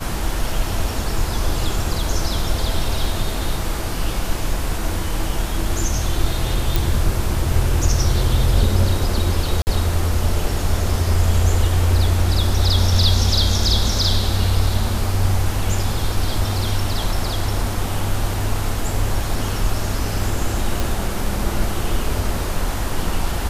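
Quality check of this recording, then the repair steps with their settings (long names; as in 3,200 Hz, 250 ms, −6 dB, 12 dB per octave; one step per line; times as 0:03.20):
0:06.76: click
0:09.62–0:09.67: drop-out 49 ms
0:20.80: click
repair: click removal
repair the gap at 0:09.62, 49 ms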